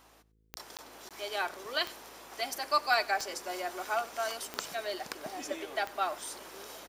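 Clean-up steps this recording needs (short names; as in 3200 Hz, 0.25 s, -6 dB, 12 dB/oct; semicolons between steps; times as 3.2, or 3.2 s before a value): de-click; de-hum 54 Hz, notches 9; interpolate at 0.77/1.09, 17 ms; inverse comb 95 ms -21.5 dB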